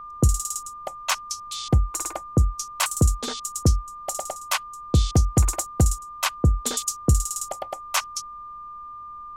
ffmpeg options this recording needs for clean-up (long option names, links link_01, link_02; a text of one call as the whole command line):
ffmpeg -i in.wav -af "bandreject=frequency=1200:width=30,agate=range=-21dB:threshold=-31dB" out.wav